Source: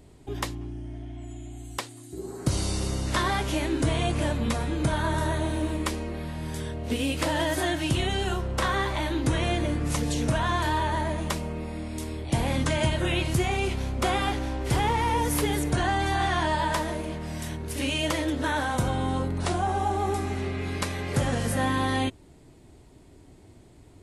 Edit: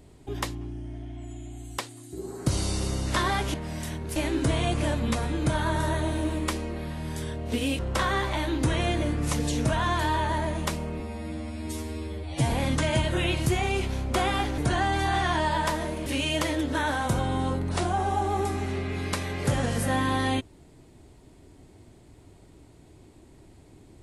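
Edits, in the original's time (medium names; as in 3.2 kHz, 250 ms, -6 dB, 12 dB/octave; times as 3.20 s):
7.17–8.42 s: delete
11.63–12.38 s: stretch 2×
14.46–15.65 s: delete
17.13–17.75 s: move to 3.54 s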